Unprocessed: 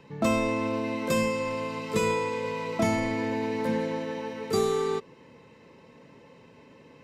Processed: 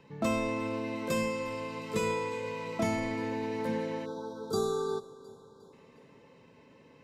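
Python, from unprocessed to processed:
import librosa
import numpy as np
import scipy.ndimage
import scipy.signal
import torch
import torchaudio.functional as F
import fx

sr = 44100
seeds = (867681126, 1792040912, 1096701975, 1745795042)

y = fx.echo_feedback(x, sr, ms=357, feedback_pct=49, wet_db=-20)
y = fx.spec_erase(y, sr, start_s=4.06, length_s=1.67, low_hz=1600.0, high_hz=3200.0)
y = y * librosa.db_to_amplitude(-5.0)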